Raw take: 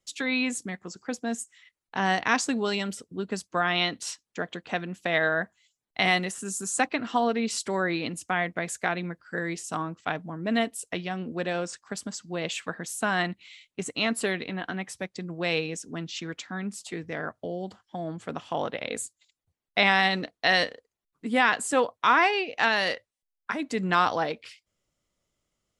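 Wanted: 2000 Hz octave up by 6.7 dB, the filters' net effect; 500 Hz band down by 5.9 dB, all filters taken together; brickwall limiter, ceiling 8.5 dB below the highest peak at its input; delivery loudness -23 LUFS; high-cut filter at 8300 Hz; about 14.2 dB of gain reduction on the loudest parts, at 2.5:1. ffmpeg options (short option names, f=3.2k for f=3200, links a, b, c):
-af "lowpass=8.3k,equalizer=f=500:t=o:g=-8.5,equalizer=f=2k:t=o:g=8.5,acompressor=threshold=-35dB:ratio=2.5,volume=13.5dB,alimiter=limit=-9.5dB:level=0:latency=1"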